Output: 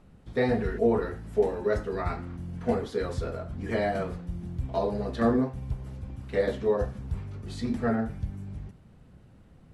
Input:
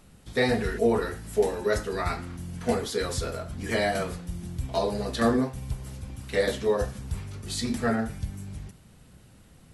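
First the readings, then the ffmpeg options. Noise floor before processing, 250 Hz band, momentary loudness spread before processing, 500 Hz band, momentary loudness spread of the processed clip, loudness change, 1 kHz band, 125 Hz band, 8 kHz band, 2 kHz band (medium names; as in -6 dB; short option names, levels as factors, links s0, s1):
-54 dBFS, 0.0 dB, 12 LU, -1.0 dB, 12 LU, -1.5 dB, -2.0 dB, 0.0 dB, under -15 dB, -5.5 dB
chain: -af "lowpass=f=1100:p=1"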